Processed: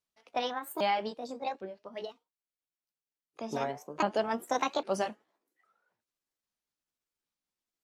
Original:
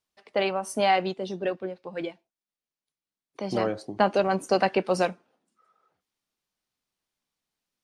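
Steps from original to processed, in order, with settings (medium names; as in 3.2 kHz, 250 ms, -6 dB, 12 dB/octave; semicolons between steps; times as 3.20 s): sawtooth pitch modulation +7.5 st, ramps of 805 ms; trim -6 dB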